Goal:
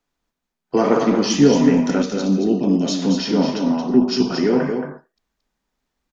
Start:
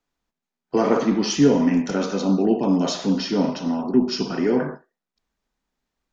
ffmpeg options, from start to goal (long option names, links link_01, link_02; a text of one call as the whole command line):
ffmpeg -i in.wav -filter_complex "[0:a]asettb=1/sr,asplit=3[link_01][link_02][link_03];[link_01]atrim=end=2.024[link_04];[link_02]atrim=start=2.02:end=3.02,asetpts=PTS-STARTPTS,afade=type=in:duration=0.004:curve=qsin,afade=type=out:start_time=0.996:duration=0.004:curve=qsin,equalizer=frequency=1000:width=0.88:gain=-11.5[link_05];[link_03]atrim=start=3.016[link_06];[link_04][link_05]acrossfade=duration=0.004:curve1=hsin:curve2=qsin[link_07];[link_07][link_06]acrossfade=duration=0.004:curve1=qsin:curve2=hsin,aecho=1:1:226:0.473,volume=2.5dB" out.wav